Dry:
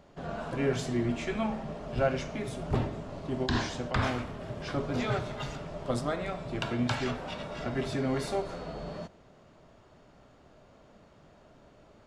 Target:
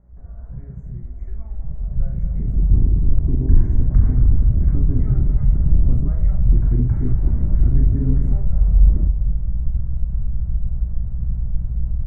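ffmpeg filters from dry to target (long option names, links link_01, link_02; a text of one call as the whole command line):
ffmpeg -i in.wav -filter_complex "[0:a]acompressor=threshold=-49dB:ratio=2,asubboost=boost=5:cutoff=78,asoftclip=type=tanh:threshold=-34dB,asplit=2[link_01][link_02];[link_02]adelay=222,lowpass=frequency=2000:poles=1,volume=-10dB,asplit=2[link_03][link_04];[link_04]adelay=222,lowpass=frequency=2000:poles=1,volume=0.47,asplit=2[link_05][link_06];[link_06]adelay=222,lowpass=frequency=2000:poles=1,volume=0.47,asplit=2[link_07][link_08];[link_08]adelay=222,lowpass=frequency=2000:poles=1,volume=0.47,asplit=2[link_09][link_10];[link_10]adelay=222,lowpass=frequency=2000:poles=1,volume=0.47[link_11];[link_03][link_05][link_07][link_09][link_11]amix=inputs=5:normalize=0[link_12];[link_01][link_12]amix=inputs=2:normalize=0,aeval=exprs='val(0)+0.002*(sin(2*PI*60*n/s)+sin(2*PI*2*60*n/s)/2+sin(2*PI*3*60*n/s)/3+sin(2*PI*4*60*n/s)/4+sin(2*PI*5*60*n/s)/5)':channel_layout=same,aemphasis=mode=reproduction:type=riaa,asplit=2[link_13][link_14];[link_14]aecho=0:1:267|534|801|1068|1335:0.119|0.0689|0.04|0.0232|0.0134[link_15];[link_13][link_15]amix=inputs=2:normalize=0,dynaudnorm=framelen=940:gausssize=5:maxgain=11dB,asuperstop=centerf=3700:order=20:qfactor=0.95,asplit=2[link_16][link_17];[link_17]adelay=39,volume=-6dB[link_18];[link_16][link_18]amix=inputs=2:normalize=0,afwtdn=0.126,volume=3dB" out.wav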